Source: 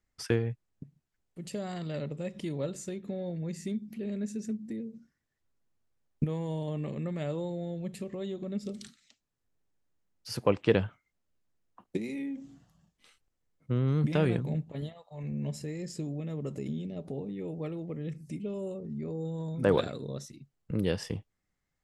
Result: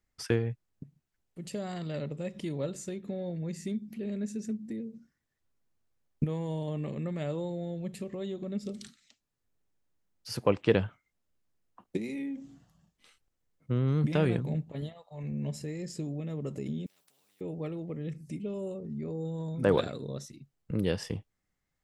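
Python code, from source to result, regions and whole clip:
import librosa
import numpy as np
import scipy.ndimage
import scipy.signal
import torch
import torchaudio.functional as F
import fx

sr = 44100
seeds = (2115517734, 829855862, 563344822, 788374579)

y = fx.chain(x, sr, fx.differentiator(),
    fx.notch(hz=6500.0, q=10.0),
    fx.spectral_comp(ratio=4.0), at=(16.86, 17.41))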